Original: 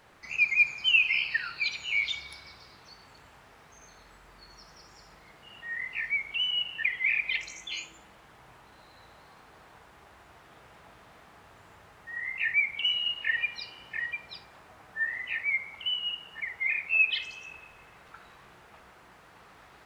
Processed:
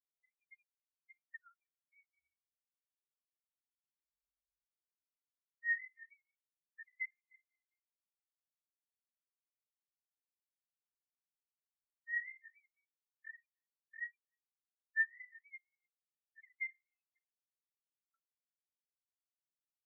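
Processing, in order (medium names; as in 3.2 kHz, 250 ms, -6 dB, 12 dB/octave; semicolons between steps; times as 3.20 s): low-pass that closes with the level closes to 1.6 kHz, closed at -26.5 dBFS; compression 6:1, threshold -38 dBFS, peak gain reduction 12 dB; Chebyshev low-pass 2.1 kHz, order 5; delay 307 ms -14.5 dB; spectral contrast expander 4:1; trim +6 dB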